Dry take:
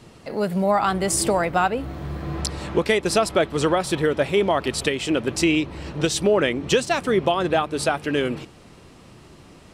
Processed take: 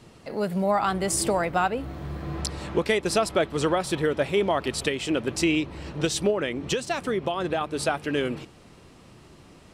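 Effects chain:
0:06.30–0:07.61: downward compressor, threshold −19 dBFS, peak gain reduction 6 dB
level −3.5 dB

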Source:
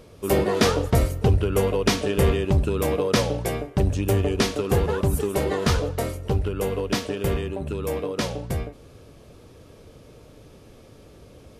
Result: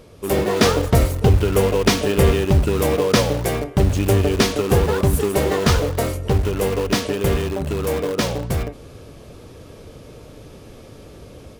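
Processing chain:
automatic gain control gain up to 5 dB
in parallel at −10.5 dB: wrap-around overflow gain 20 dB

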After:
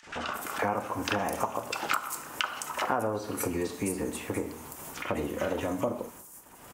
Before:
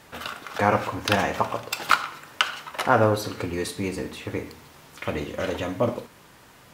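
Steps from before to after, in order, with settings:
noise gate −48 dBFS, range −38 dB
three-band delay without the direct sound mids, lows, highs 30/210 ms, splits 1,500/6,000 Hz
upward compression, threshold −33 dBFS
graphic EQ with 10 bands 125 Hz −7 dB, 500 Hz −4 dB, 2,000 Hz −5 dB, 4,000 Hz −12 dB, 8,000 Hz +3 dB
downward compressor 5 to 1, threshold −32 dBFS, peak gain reduction 13.5 dB
low-shelf EQ 200 Hz −5 dB
level +6.5 dB

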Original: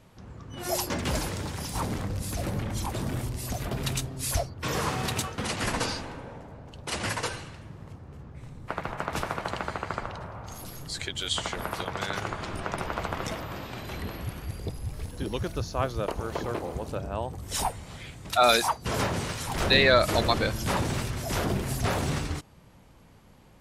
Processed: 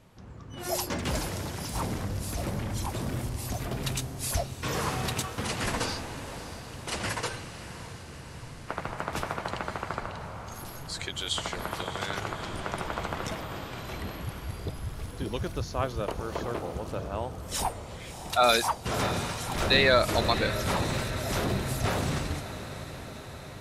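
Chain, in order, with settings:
feedback delay with all-pass diffusion 627 ms, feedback 68%, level −12.5 dB
level −1.5 dB

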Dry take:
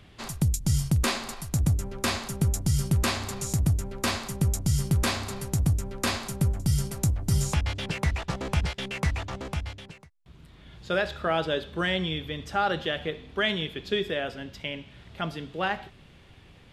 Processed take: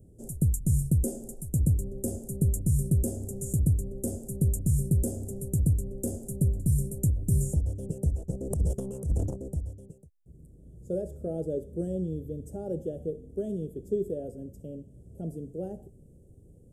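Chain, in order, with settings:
elliptic band-stop filter 500–8,200 Hz, stop band 40 dB
0:08.50–0:09.36: transient designer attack −10 dB, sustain +11 dB

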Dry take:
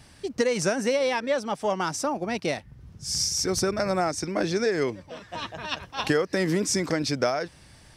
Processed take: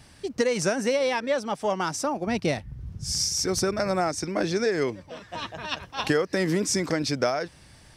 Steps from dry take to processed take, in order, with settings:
0:02.27–0:03.13: low-shelf EQ 180 Hz +11.5 dB

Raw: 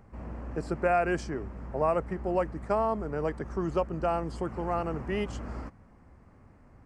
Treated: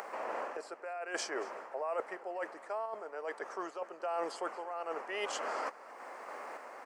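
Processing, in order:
high-pass filter 510 Hz 24 dB per octave
in parallel at −2.5 dB: upward compression, threshold −35 dBFS
on the sum: brickwall limiter −20 dBFS, peak gain reduction 8 dB
reversed playback
downward compressor 12 to 1, threshold −39 dBFS, peak gain reduction 15 dB
reversed playback
sample-and-hold tremolo
single-tap delay 232 ms −20.5 dB
level +6.5 dB

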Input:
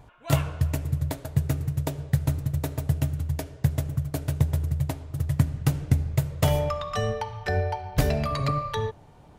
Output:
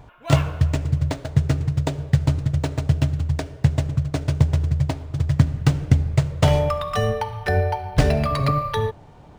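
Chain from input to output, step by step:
linearly interpolated sample-rate reduction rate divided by 3×
level +5.5 dB

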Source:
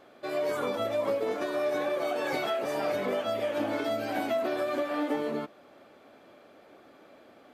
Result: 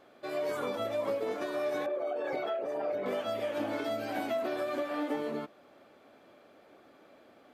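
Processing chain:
0:01.86–0:03.06: spectral envelope exaggerated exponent 1.5
level −3.5 dB

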